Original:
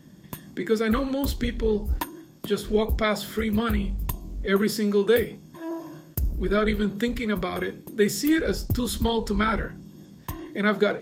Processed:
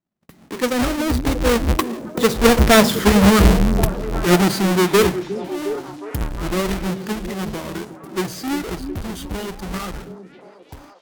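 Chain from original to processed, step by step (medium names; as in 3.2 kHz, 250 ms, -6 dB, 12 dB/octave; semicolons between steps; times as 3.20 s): square wave that keeps the level; Doppler pass-by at 2.90 s, 39 m/s, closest 17 m; gate -57 dBFS, range -23 dB; level rider gain up to 14.5 dB; repeats whose band climbs or falls 359 ms, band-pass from 260 Hz, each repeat 0.7 oct, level -6.5 dB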